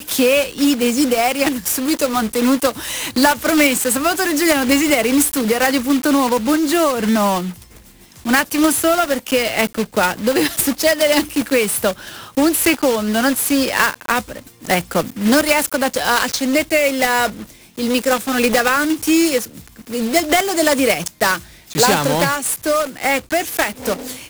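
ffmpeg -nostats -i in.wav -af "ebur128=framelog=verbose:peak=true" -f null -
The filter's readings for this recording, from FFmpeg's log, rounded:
Integrated loudness:
  I:         -16.5 LUFS
  Threshold: -26.7 LUFS
Loudness range:
  LRA:         2.1 LU
  Threshold: -36.7 LUFS
  LRA low:   -17.5 LUFS
  LRA high:  -15.4 LUFS
True peak:
  Peak:       -0.3 dBFS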